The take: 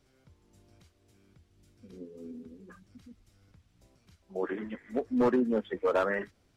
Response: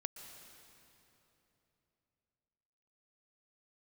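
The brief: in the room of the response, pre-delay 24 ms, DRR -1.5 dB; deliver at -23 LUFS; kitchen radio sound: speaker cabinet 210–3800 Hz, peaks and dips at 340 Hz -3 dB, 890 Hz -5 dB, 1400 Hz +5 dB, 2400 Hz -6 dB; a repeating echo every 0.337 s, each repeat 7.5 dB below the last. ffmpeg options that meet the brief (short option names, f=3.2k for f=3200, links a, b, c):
-filter_complex "[0:a]aecho=1:1:337|674|1011|1348|1685:0.422|0.177|0.0744|0.0312|0.0131,asplit=2[a][b];[1:a]atrim=start_sample=2205,adelay=24[c];[b][c]afir=irnorm=-1:irlink=0,volume=3.5dB[d];[a][d]amix=inputs=2:normalize=0,highpass=210,equalizer=f=340:t=q:w=4:g=-3,equalizer=f=890:t=q:w=4:g=-5,equalizer=f=1.4k:t=q:w=4:g=5,equalizer=f=2.4k:t=q:w=4:g=-6,lowpass=f=3.8k:w=0.5412,lowpass=f=3.8k:w=1.3066,volume=3.5dB"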